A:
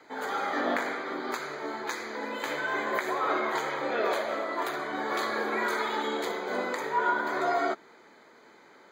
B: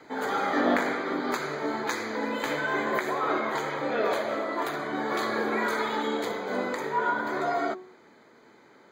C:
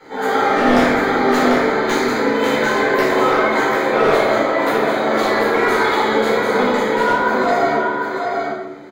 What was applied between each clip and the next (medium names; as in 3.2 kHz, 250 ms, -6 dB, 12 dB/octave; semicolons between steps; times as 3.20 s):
gain riding 2 s; bass shelf 280 Hz +10.5 dB; de-hum 184.9 Hz, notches 6
delay 744 ms -4.5 dB; wavefolder -18 dBFS; simulated room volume 360 m³, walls mixed, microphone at 4.4 m